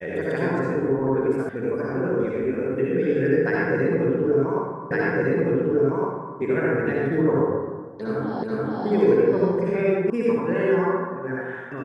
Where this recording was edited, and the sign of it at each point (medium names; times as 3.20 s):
1.49 s: sound stops dead
4.91 s: repeat of the last 1.46 s
8.43 s: repeat of the last 0.43 s
10.10 s: sound stops dead